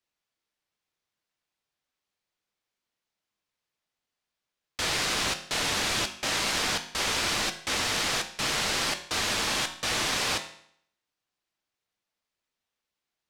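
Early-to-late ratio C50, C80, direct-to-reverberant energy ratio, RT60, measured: 11.5 dB, 15.0 dB, 6.5 dB, 0.65 s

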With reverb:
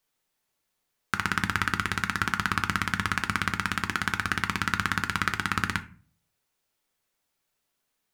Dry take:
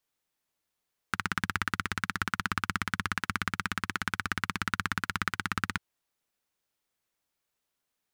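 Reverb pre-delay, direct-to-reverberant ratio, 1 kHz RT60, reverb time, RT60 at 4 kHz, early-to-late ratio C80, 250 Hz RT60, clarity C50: 5 ms, 7.5 dB, 0.40 s, 0.45 s, 0.25 s, 20.5 dB, 0.60 s, 16.0 dB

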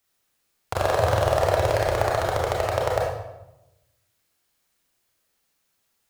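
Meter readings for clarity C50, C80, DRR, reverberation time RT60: 0.5 dB, 4.0 dB, −3.0 dB, 0.95 s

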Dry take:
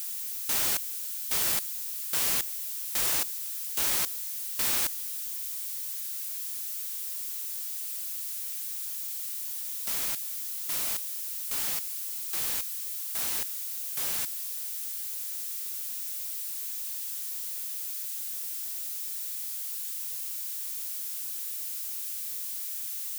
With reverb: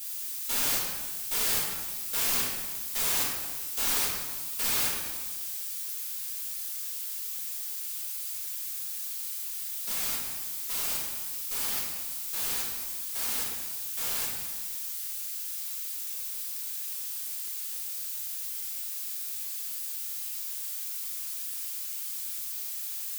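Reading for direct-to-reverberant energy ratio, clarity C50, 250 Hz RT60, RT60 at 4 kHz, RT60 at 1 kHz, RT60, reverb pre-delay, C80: −6.5 dB, 1.0 dB, 1.5 s, 1.0 s, 1.3 s, 1.3 s, 4 ms, 3.0 dB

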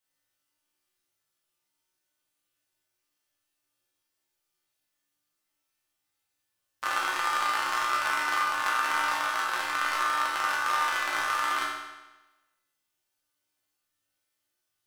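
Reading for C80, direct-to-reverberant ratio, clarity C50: 3.5 dB, −6.0 dB, 1.0 dB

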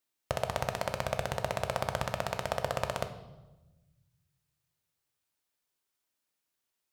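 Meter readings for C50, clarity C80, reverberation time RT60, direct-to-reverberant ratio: 11.0 dB, 13.0 dB, 1.1 s, 6.5 dB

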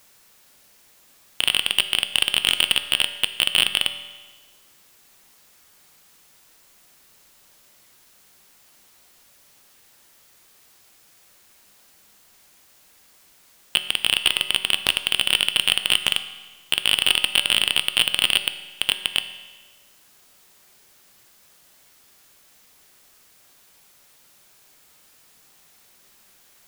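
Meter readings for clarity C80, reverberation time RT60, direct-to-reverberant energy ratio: 12.5 dB, 1.4 s, 9.0 dB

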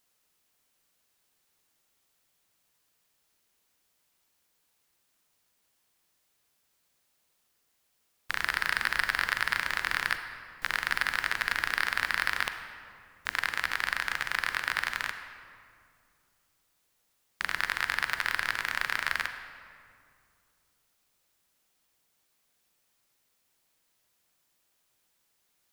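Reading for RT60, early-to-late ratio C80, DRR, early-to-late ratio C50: 2.3 s, 9.0 dB, 7.5 dB, 8.0 dB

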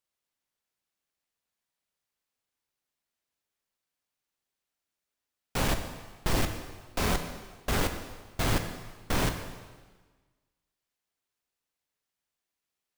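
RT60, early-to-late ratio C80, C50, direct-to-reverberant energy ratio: 1.4 s, 9.5 dB, 8.0 dB, 6.0 dB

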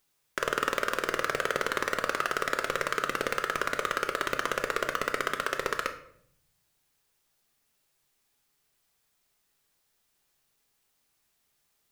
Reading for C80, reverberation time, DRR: 14.5 dB, 0.65 s, 6.0 dB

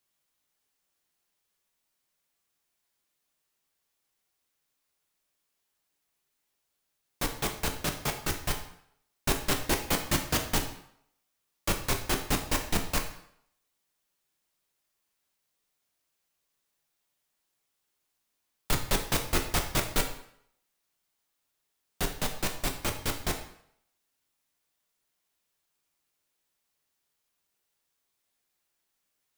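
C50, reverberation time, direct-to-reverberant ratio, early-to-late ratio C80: 8.5 dB, 0.70 s, 3.0 dB, 11.5 dB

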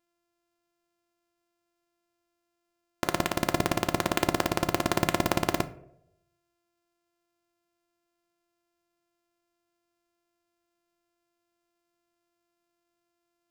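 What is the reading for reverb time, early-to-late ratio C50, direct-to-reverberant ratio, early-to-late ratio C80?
0.80 s, 16.5 dB, 10.5 dB, 19.5 dB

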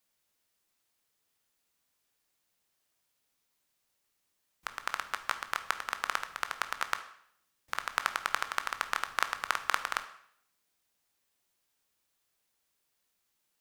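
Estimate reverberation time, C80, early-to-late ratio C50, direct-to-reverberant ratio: 0.65 s, 15.0 dB, 12.5 dB, 9.0 dB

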